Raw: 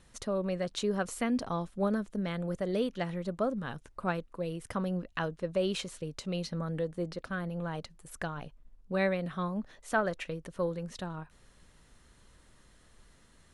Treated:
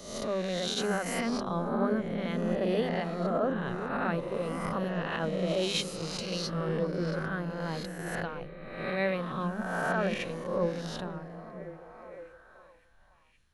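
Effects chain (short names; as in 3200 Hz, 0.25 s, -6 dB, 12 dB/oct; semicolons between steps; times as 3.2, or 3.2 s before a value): spectral swells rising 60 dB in 1.40 s; bell 8200 Hz -7.5 dB 0.47 oct; notches 50/100/150/200/250 Hz; limiter -21.5 dBFS, peak gain reduction 10 dB; delay with a stepping band-pass 0.522 s, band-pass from 200 Hz, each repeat 0.7 oct, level -2 dB; three-band expander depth 70%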